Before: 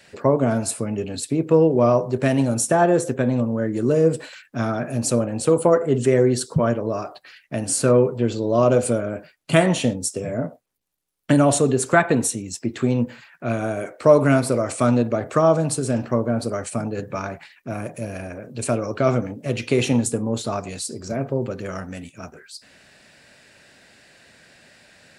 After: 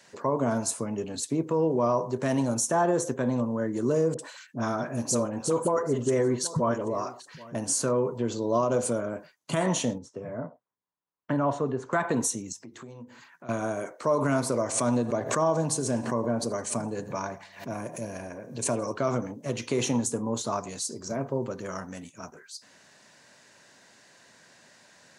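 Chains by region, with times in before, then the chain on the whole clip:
4.14–7.55 s: phase dispersion highs, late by 47 ms, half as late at 870 Hz + delay 782 ms -22 dB
9.98–11.93 s: low-pass 1.7 kHz + peaking EQ 300 Hz -5 dB 3 oct
12.52–13.49 s: hum notches 50/100/150/200/250/300/350/400/450 Hz + compression 3:1, threshold -40 dBFS
14.57–18.93 s: band-stop 1.3 kHz, Q 6.6 + feedback delay 83 ms, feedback 56%, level -20 dB + swell ahead of each attack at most 120 dB/s
whole clip: graphic EQ with 31 bands 1 kHz +10 dB, 2.5 kHz -5 dB, 6.3 kHz +10 dB; peak limiter -10.5 dBFS; high-pass 120 Hz; trim -5.5 dB

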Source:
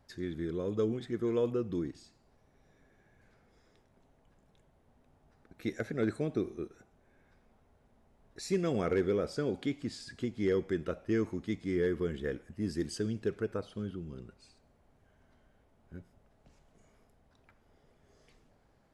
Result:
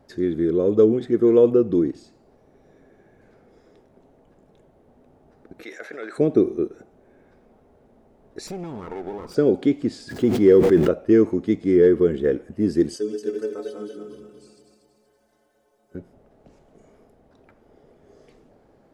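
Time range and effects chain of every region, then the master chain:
5.63–6.18 s: high-pass 1.4 kHz + treble shelf 3 kHz -11 dB + level flattener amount 70%
8.47–9.35 s: comb filter that takes the minimum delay 0.83 ms + compression 16:1, threshold -41 dBFS
10.09–10.89 s: jump at every zero crossing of -47 dBFS + short-mantissa float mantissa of 6-bit + decay stretcher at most 27 dB/s
12.96–15.95 s: backward echo that repeats 119 ms, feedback 65%, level -4 dB + tone controls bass -14 dB, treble +13 dB + inharmonic resonator 64 Hz, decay 0.37 s, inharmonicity 0.03
whole clip: peaking EQ 390 Hz +13 dB 2.4 oct; band-stop 1 kHz, Q 30; trim +3.5 dB

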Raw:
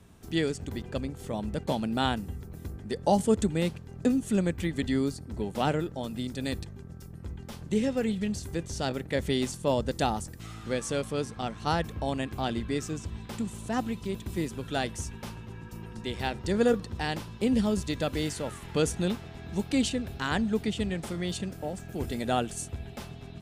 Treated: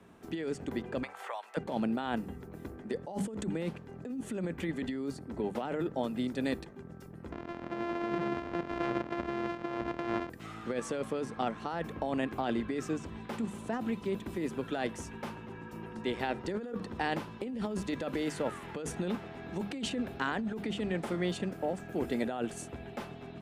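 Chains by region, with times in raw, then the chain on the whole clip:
1.03–1.57 s: high-pass 810 Hz 24 dB/octave + three bands compressed up and down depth 100%
7.32–10.30 s: sorted samples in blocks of 128 samples + distance through air 140 m
whole clip: three-band isolator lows -15 dB, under 180 Hz, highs -12 dB, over 2.6 kHz; hum notches 50/100/150/200 Hz; compressor with a negative ratio -33 dBFS, ratio -1

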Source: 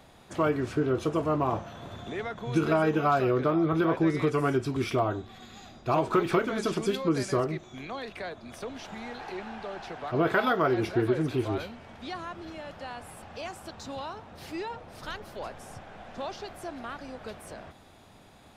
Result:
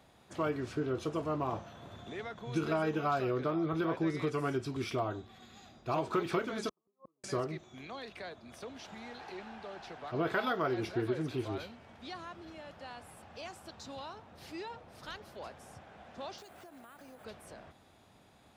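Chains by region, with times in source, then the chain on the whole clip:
6.69–7.24 s: brick-wall FIR low-pass 1.3 kHz + tilt EQ +4 dB/octave + inverted gate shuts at -29 dBFS, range -41 dB
16.38–17.25 s: high-pass 140 Hz 6 dB/octave + compression 12:1, threshold -41 dBFS + careless resampling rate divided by 4×, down none, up hold
whole clip: high-pass 46 Hz; dynamic bell 4.6 kHz, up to +4 dB, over -51 dBFS, Q 1; trim -7.5 dB

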